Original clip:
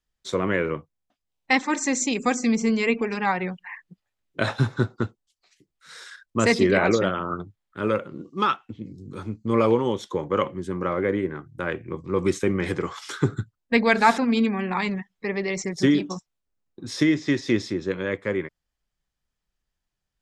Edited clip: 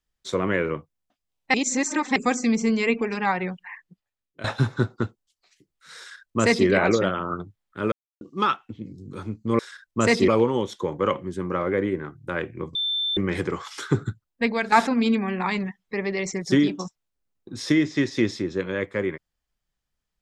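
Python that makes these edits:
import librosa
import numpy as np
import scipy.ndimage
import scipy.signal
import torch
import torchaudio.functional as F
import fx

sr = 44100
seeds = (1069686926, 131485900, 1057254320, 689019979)

y = fx.edit(x, sr, fx.reverse_span(start_s=1.54, length_s=0.62),
    fx.fade_out_to(start_s=3.56, length_s=0.88, floor_db=-17.0),
    fx.duplicate(start_s=5.98, length_s=0.69, to_s=9.59),
    fx.silence(start_s=7.92, length_s=0.29),
    fx.bleep(start_s=12.06, length_s=0.42, hz=3550.0, db=-22.5),
    fx.fade_out_to(start_s=13.28, length_s=0.75, curve='qsin', floor_db=-10.5), tone=tone)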